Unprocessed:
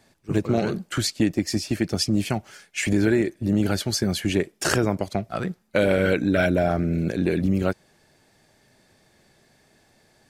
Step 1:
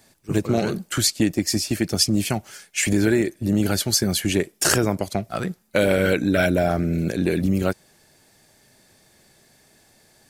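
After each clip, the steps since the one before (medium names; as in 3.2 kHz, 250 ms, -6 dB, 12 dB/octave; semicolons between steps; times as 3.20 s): treble shelf 6.4 kHz +12 dB; trim +1 dB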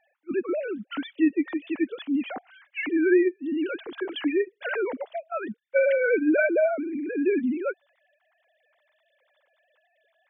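formants replaced by sine waves; trim -4 dB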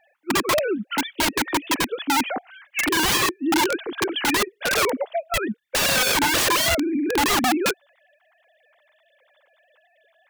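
integer overflow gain 23 dB; trim +7.5 dB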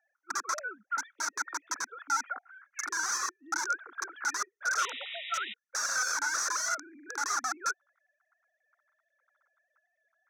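two resonant band-passes 2.9 kHz, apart 2.1 oct; painted sound noise, 4.78–5.54 s, 1.8–3.9 kHz -41 dBFS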